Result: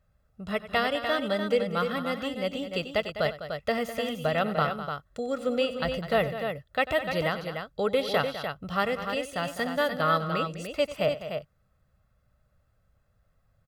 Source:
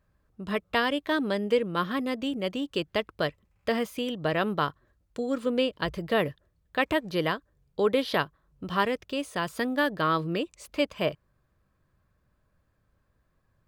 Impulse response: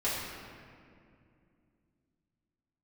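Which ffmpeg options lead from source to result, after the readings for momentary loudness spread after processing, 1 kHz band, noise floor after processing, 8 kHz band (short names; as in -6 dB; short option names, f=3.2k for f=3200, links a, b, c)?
7 LU, +1.0 dB, -69 dBFS, +1.5 dB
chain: -filter_complex "[0:a]aecho=1:1:1.5:0.63,asplit=2[a][b];[b]aecho=0:1:94|203|297:0.168|0.251|0.447[c];[a][c]amix=inputs=2:normalize=0,volume=-1.5dB"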